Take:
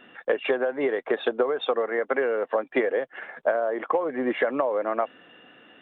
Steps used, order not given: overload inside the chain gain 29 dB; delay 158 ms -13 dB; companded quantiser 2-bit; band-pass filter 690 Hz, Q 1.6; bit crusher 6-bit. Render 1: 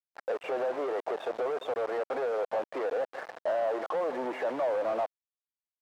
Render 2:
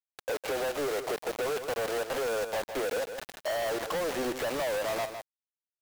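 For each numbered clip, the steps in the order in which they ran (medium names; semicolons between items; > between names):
overload inside the chain > delay > bit crusher > companded quantiser > band-pass filter; bit crusher > band-pass filter > companded quantiser > delay > overload inside the chain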